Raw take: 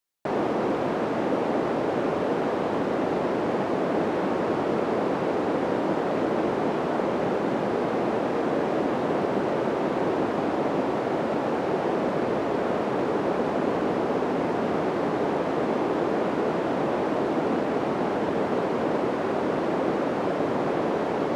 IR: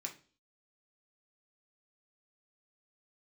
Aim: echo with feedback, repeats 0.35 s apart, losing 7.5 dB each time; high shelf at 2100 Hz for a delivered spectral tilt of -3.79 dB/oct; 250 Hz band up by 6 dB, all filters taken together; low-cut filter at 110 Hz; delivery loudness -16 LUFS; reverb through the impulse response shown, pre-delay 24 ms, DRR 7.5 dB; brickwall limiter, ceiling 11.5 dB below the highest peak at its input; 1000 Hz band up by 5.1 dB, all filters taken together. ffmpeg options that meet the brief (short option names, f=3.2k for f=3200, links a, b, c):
-filter_complex "[0:a]highpass=110,equalizer=f=250:t=o:g=7.5,equalizer=f=1k:t=o:g=7.5,highshelf=f=2.1k:g=-7,alimiter=limit=-18dB:level=0:latency=1,aecho=1:1:350|700|1050|1400|1750:0.422|0.177|0.0744|0.0312|0.0131,asplit=2[a][b];[1:a]atrim=start_sample=2205,adelay=24[c];[b][c]afir=irnorm=-1:irlink=0,volume=-6dB[d];[a][d]amix=inputs=2:normalize=0,volume=9dB"